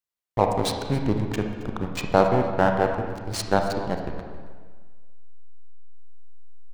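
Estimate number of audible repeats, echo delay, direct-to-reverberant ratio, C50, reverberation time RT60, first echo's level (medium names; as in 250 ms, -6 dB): 1, 271 ms, 3.5 dB, 4.5 dB, 1.6 s, -18.0 dB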